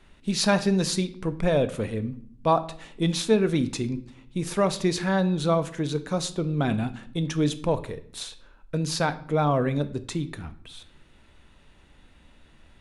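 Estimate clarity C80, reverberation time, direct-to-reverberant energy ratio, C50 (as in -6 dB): 19.0 dB, 0.60 s, 11.0 dB, 15.5 dB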